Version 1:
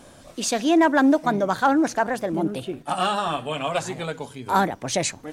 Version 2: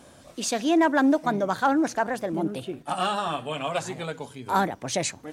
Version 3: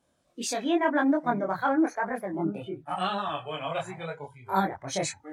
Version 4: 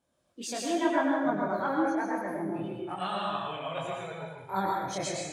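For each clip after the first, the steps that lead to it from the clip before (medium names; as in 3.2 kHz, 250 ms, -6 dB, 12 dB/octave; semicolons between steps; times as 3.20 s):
high-pass 46 Hz; trim -3 dB
chorus voices 2, 0.94 Hz, delay 23 ms, depth 3 ms; spectral noise reduction 18 dB
plate-style reverb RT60 0.97 s, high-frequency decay 0.95×, pre-delay 90 ms, DRR -1.5 dB; trim -6 dB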